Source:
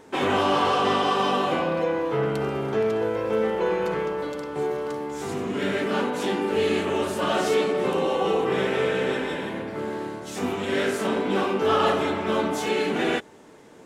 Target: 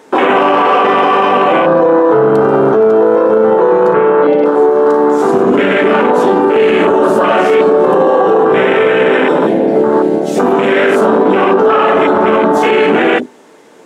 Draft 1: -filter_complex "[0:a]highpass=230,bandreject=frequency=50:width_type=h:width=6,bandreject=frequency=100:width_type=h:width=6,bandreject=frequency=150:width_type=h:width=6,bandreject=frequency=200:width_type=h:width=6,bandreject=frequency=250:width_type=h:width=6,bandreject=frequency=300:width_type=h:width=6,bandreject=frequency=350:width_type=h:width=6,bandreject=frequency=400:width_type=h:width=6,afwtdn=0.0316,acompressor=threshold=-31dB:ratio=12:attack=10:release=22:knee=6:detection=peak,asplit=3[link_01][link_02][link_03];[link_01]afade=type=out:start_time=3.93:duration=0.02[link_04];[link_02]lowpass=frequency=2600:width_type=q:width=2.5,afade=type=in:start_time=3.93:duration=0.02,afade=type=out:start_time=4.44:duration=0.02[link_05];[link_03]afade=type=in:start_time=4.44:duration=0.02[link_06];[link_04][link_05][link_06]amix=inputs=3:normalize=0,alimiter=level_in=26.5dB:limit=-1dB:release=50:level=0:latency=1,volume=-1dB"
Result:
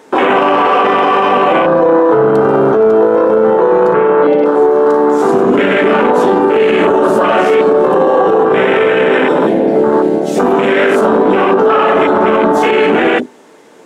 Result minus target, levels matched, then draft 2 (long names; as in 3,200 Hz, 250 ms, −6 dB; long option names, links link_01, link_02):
downward compressor: peak gain reduction +11.5 dB
-filter_complex "[0:a]highpass=230,bandreject=frequency=50:width_type=h:width=6,bandreject=frequency=100:width_type=h:width=6,bandreject=frequency=150:width_type=h:width=6,bandreject=frequency=200:width_type=h:width=6,bandreject=frequency=250:width_type=h:width=6,bandreject=frequency=300:width_type=h:width=6,bandreject=frequency=350:width_type=h:width=6,bandreject=frequency=400:width_type=h:width=6,afwtdn=0.0316,asplit=3[link_01][link_02][link_03];[link_01]afade=type=out:start_time=3.93:duration=0.02[link_04];[link_02]lowpass=frequency=2600:width_type=q:width=2.5,afade=type=in:start_time=3.93:duration=0.02,afade=type=out:start_time=4.44:duration=0.02[link_05];[link_03]afade=type=in:start_time=4.44:duration=0.02[link_06];[link_04][link_05][link_06]amix=inputs=3:normalize=0,alimiter=level_in=26.5dB:limit=-1dB:release=50:level=0:latency=1,volume=-1dB"